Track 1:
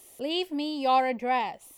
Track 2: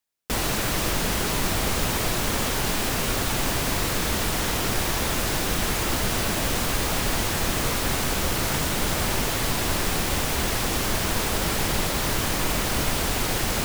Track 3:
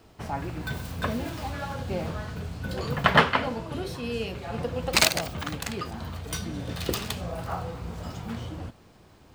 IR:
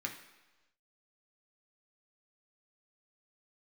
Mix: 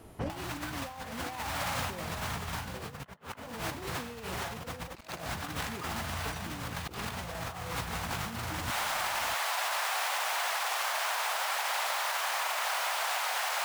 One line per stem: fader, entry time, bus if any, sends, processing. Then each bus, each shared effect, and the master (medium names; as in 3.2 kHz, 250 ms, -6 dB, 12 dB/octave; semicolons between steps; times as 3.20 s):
-9.0 dB, 0.00 s, send -10.5 dB, none
-1.5 dB, 0.00 s, no send, steep high-pass 690 Hz 36 dB/octave; peak limiter -19 dBFS, peak gain reduction 4.5 dB
0.0 dB, 0.00 s, no send, auto duck -6 dB, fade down 1.30 s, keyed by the first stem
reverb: on, RT60 1.1 s, pre-delay 3 ms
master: treble shelf 3 kHz -10.5 dB; compressor with a negative ratio -35 dBFS, ratio -0.5